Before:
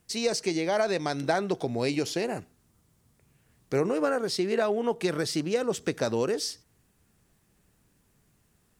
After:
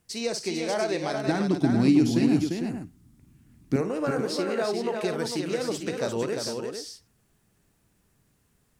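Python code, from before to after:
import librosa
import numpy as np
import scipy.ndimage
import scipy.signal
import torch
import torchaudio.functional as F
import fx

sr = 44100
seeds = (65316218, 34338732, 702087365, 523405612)

y = fx.low_shelf_res(x, sr, hz=370.0, db=8.5, q=3.0, at=(1.27, 3.76))
y = fx.echo_multitap(y, sr, ms=(52, 347, 449), db=(-10.0, -5.0, -8.0))
y = y * librosa.db_to_amplitude(-2.5)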